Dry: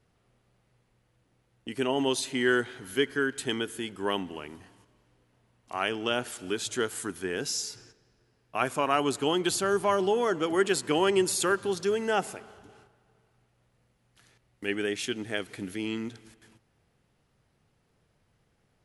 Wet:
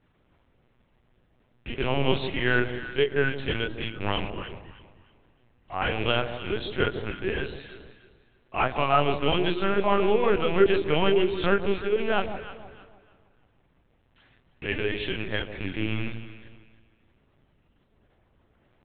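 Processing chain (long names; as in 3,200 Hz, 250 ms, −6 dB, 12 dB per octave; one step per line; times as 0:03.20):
loose part that buzzes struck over −39 dBFS, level −25 dBFS
mains-hum notches 50/100/150/200/250/300/350 Hz
multi-voice chorus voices 4, 0.6 Hz, delay 27 ms, depth 1.4 ms
linear-prediction vocoder at 8 kHz pitch kept
delay that swaps between a low-pass and a high-pass 156 ms, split 960 Hz, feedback 53%, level −8.5 dB
level +6 dB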